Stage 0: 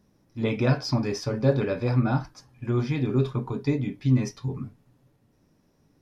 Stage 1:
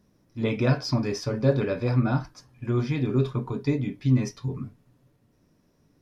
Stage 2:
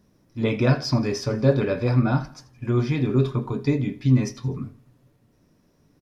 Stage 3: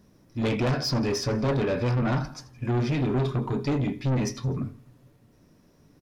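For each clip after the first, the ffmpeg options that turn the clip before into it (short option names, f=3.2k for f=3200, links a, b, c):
-af "bandreject=f=820:w=12"
-af "aecho=1:1:83|166|249:0.112|0.046|0.0189,volume=3dB"
-af "asoftclip=type=tanh:threshold=-24.5dB,volume=3dB"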